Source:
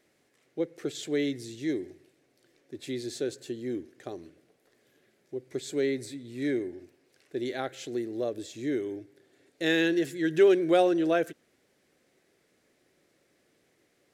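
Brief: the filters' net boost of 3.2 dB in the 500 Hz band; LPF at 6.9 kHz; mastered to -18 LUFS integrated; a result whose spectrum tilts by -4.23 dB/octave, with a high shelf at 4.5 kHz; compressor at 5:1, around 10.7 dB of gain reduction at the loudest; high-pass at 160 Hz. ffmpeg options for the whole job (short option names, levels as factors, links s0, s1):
-af "highpass=160,lowpass=6900,equalizer=f=500:t=o:g=4.5,highshelf=f=4500:g=-4.5,acompressor=threshold=0.0562:ratio=5,volume=5.31"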